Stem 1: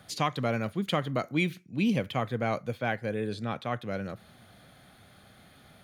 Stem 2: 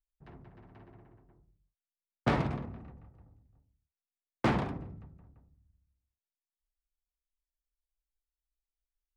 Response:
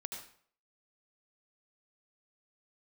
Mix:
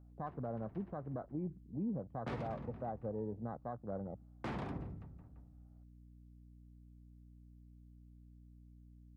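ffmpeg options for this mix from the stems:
-filter_complex "[0:a]lowpass=f=1.1k:w=0.5412,lowpass=f=1.1k:w=1.3066,equalizer=f=760:t=o:w=0.51:g=3.5,afwtdn=0.0112,volume=-6.5dB[a];[1:a]alimiter=level_in=1dB:limit=-24dB:level=0:latency=1:release=354,volume=-1dB,aeval=exprs='val(0)+0.00158*(sin(2*PI*60*n/s)+sin(2*PI*2*60*n/s)/2+sin(2*PI*3*60*n/s)/3+sin(2*PI*4*60*n/s)/4+sin(2*PI*5*60*n/s)/5)':c=same,volume=-1dB[b];[a][b]amix=inputs=2:normalize=0,alimiter=level_in=7.5dB:limit=-24dB:level=0:latency=1:release=223,volume=-7.5dB"

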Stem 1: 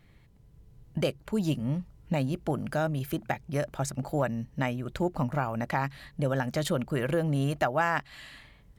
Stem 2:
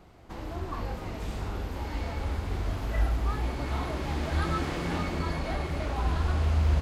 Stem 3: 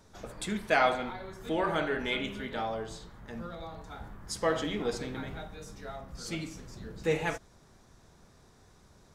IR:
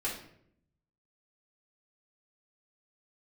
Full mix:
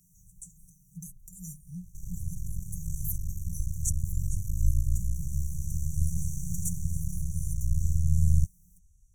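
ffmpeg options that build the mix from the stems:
-filter_complex "[0:a]aecho=1:1:4.9:0.99,acompressor=threshold=-39dB:ratio=2,highpass=f=210:w=0.5412,highpass=f=210:w=1.3066,volume=-2.5dB[a];[1:a]aeval=exprs='max(val(0),0)':c=same,adelay=1650,volume=-2dB[b];[2:a]asubboost=boost=7:cutoff=55,acompressor=threshold=-31dB:ratio=6,volume=-17dB[c];[a][b][c]amix=inputs=3:normalize=0,afftfilt=real='re*(1-between(b*sr/4096,190,5700))':imag='im*(1-between(b*sr/4096,190,5700))':win_size=4096:overlap=0.75,bass=f=250:g=8,treble=f=4k:g=15"

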